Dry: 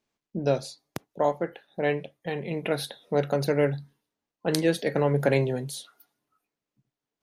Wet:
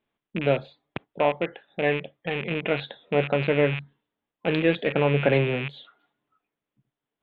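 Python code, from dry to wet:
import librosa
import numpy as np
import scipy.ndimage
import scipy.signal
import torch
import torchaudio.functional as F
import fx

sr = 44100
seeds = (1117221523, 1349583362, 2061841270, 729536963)

y = fx.rattle_buzz(x, sr, strikes_db=-36.0, level_db=-22.0)
y = scipy.signal.sosfilt(scipy.signal.ellip(4, 1.0, 40, 3500.0, 'lowpass', fs=sr, output='sos'), y)
y = F.gain(torch.from_numpy(y), 2.5).numpy()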